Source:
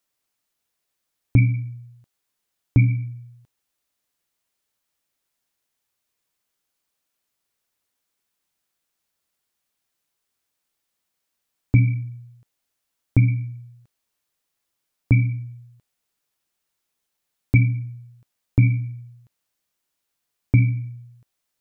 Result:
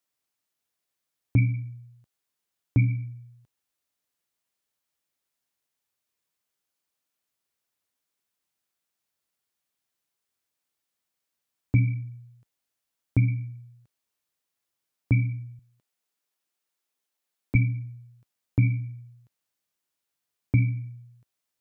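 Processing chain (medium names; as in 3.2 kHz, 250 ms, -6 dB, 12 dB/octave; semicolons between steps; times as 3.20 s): high-pass 55 Hz 12 dB/octave, from 15.59 s 210 Hz, from 17.55 s 63 Hz; trim -5 dB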